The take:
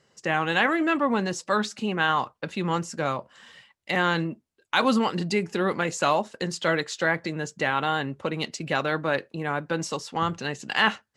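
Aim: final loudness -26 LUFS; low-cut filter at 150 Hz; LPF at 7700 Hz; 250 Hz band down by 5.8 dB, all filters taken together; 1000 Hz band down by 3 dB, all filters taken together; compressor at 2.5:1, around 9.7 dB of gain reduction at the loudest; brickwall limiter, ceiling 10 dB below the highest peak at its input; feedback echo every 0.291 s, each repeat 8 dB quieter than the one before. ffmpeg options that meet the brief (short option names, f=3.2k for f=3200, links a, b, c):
-af "highpass=150,lowpass=7.7k,equalizer=f=250:t=o:g=-7,equalizer=f=1k:t=o:g=-3.5,acompressor=threshold=-34dB:ratio=2.5,alimiter=level_in=0.5dB:limit=-24dB:level=0:latency=1,volume=-0.5dB,aecho=1:1:291|582|873|1164|1455:0.398|0.159|0.0637|0.0255|0.0102,volume=11dB"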